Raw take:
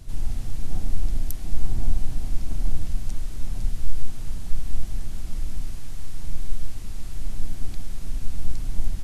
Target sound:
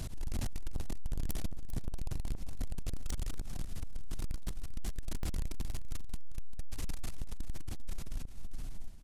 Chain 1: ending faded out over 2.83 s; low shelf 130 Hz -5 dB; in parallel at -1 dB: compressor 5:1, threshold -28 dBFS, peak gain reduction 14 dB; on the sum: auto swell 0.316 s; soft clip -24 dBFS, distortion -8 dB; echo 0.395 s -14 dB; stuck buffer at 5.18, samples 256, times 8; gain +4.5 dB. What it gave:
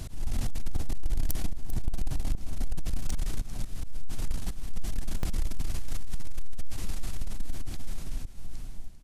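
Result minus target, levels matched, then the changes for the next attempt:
soft clip: distortion -4 dB
change: soft clip -34 dBFS, distortion -4 dB

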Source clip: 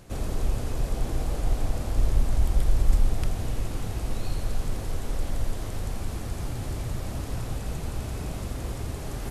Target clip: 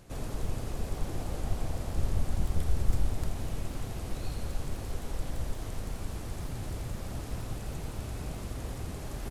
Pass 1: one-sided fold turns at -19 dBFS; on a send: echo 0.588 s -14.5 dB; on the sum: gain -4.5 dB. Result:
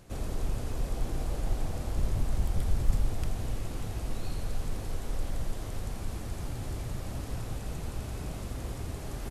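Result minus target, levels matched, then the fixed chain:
one-sided fold: distortion -11 dB
one-sided fold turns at -28 dBFS; on a send: echo 0.588 s -14.5 dB; on the sum: gain -4.5 dB

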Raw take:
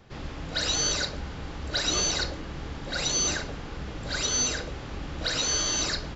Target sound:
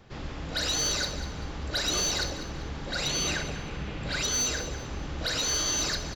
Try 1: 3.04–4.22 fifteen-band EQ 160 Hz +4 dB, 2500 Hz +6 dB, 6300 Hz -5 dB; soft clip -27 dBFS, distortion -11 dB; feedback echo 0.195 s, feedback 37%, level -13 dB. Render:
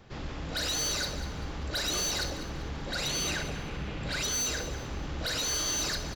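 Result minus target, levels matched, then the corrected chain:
soft clip: distortion +8 dB
3.04–4.22 fifteen-band EQ 160 Hz +4 dB, 2500 Hz +6 dB, 6300 Hz -5 dB; soft clip -20.5 dBFS, distortion -18 dB; feedback echo 0.195 s, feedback 37%, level -13 dB

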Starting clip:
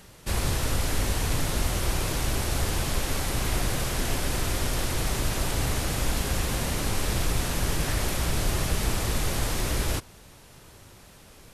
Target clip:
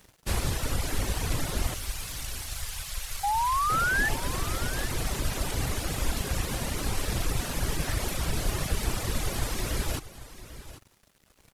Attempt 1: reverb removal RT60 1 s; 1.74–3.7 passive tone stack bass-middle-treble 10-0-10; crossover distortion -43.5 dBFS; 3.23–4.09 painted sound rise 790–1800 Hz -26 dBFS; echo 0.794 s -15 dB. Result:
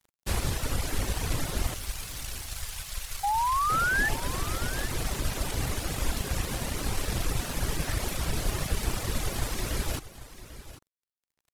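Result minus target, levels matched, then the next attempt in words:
crossover distortion: distortion +8 dB
reverb removal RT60 1 s; 1.74–3.7 passive tone stack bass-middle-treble 10-0-10; crossover distortion -51.5 dBFS; 3.23–4.09 painted sound rise 790–1800 Hz -26 dBFS; echo 0.794 s -15 dB

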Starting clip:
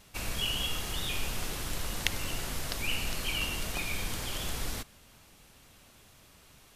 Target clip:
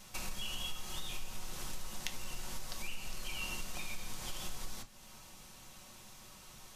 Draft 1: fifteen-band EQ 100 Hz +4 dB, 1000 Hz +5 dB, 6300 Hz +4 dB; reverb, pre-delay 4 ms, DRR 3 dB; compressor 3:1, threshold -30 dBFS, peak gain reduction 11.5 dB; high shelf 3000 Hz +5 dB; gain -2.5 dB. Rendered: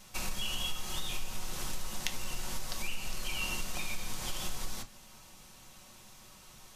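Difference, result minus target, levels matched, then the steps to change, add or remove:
compressor: peak gain reduction -5 dB
change: compressor 3:1, threshold -37.5 dBFS, peak gain reduction 16.5 dB

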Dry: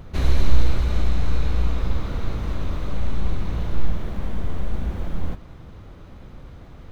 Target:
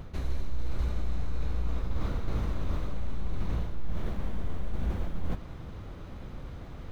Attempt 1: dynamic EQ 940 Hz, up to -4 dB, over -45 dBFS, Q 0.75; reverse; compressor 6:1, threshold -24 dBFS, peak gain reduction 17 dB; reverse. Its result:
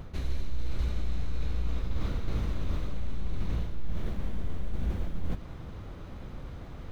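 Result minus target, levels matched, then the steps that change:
1000 Hz band -2.5 dB
change: dynamic EQ 3200 Hz, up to -4 dB, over -45 dBFS, Q 0.75

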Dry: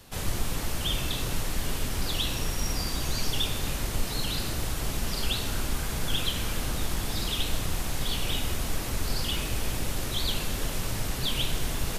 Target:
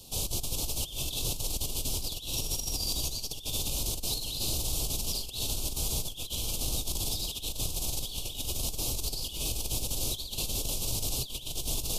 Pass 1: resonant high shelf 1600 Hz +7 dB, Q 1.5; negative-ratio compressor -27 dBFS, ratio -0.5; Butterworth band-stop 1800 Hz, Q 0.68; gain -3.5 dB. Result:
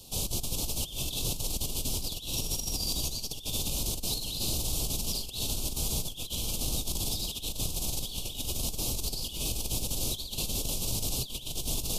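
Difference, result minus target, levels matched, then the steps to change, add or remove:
250 Hz band +3.0 dB
add after Butterworth band-stop: dynamic EQ 200 Hz, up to -5 dB, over -50 dBFS, Q 1.7

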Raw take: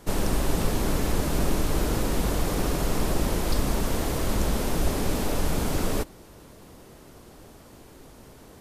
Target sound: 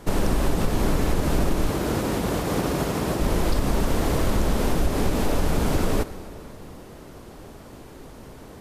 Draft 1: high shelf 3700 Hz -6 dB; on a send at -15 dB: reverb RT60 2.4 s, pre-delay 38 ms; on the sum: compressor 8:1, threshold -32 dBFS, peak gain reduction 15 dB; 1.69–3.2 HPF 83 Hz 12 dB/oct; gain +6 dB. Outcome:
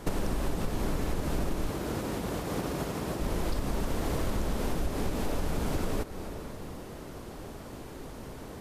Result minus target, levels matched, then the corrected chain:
compressor: peak gain reduction +9 dB
high shelf 3700 Hz -6 dB; on a send at -15 dB: reverb RT60 2.4 s, pre-delay 38 ms; on the sum: compressor 8:1, threshold -22 dBFS, peak gain reduction 6 dB; 1.69–3.2 HPF 83 Hz 12 dB/oct; gain +6 dB

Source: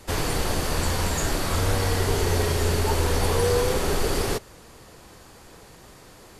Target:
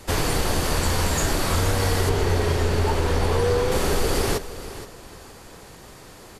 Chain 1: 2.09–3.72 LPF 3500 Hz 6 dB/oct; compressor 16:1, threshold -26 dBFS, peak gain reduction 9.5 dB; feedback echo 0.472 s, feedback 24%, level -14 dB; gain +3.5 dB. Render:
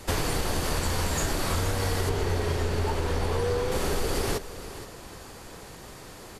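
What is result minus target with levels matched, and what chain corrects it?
compressor: peak gain reduction +6 dB
2.09–3.72 LPF 3500 Hz 6 dB/oct; compressor 16:1, threshold -19.5 dBFS, peak gain reduction 3.5 dB; feedback echo 0.472 s, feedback 24%, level -14 dB; gain +3.5 dB

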